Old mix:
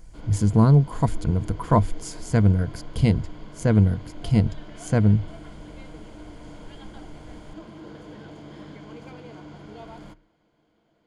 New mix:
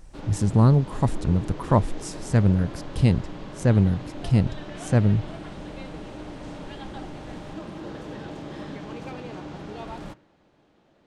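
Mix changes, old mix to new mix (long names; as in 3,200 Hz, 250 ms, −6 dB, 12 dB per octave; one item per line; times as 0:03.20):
background +6.5 dB
master: remove EQ curve with evenly spaced ripples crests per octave 1.8, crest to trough 8 dB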